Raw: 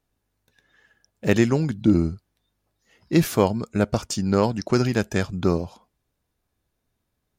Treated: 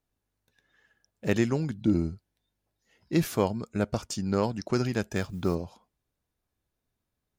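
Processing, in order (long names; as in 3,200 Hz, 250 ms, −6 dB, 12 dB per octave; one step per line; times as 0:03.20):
0:01.83–0:03.14: notch filter 1,200 Hz, Q 7.5
0:05.15–0:05.55: noise that follows the level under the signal 30 dB
level −6.5 dB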